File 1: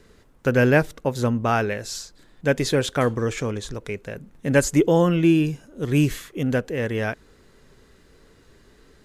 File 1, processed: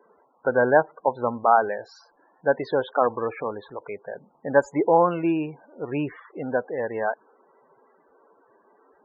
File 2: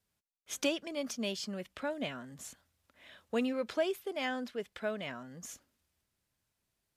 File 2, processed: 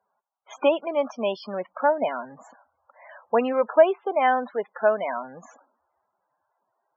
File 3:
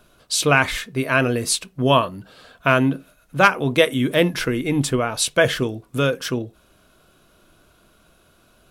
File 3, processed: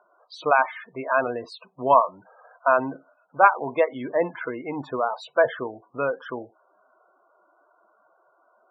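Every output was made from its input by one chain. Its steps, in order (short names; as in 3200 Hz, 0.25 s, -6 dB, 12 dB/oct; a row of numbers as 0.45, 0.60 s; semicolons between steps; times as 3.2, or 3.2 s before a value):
band-pass 870 Hz, Q 2.2; loudest bins only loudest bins 32; match loudness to -24 LUFS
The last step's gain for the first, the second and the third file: +8.5, +21.5, +4.5 dB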